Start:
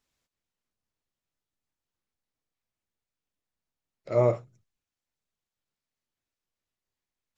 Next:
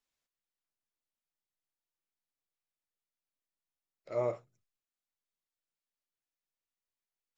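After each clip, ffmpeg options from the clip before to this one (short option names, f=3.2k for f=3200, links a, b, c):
-af "equalizer=f=80:w=0.33:g=-9.5,volume=-7.5dB"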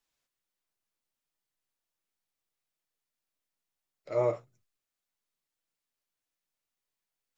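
-af "flanger=delay=5.8:depth=5.1:regen=-48:speed=0.71:shape=triangular,volume=8.5dB"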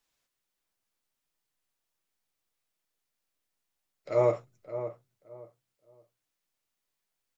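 -filter_complex "[0:a]asplit=2[a][b];[b]adelay=572,lowpass=f=1.5k:p=1,volume=-10.5dB,asplit=2[c][d];[d]adelay=572,lowpass=f=1.5k:p=1,volume=0.25,asplit=2[e][f];[f]adelay=572,lowpass=f=1.5k:p=1,volume=0.25[g];[a][c][e][g]amix=inputs=4:normalize=0,volume=3.5dB"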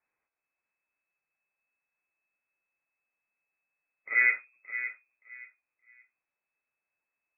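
-af "lowpass=f=2.2k:t=q:w=0.5098,lowpass=f=2.2k:t=q:w=0.6013,lowpass=f=2.2k:t=q:w=0.9,lowpass=f=2.2k:t=q:w=2.563,afreqshift=-2600"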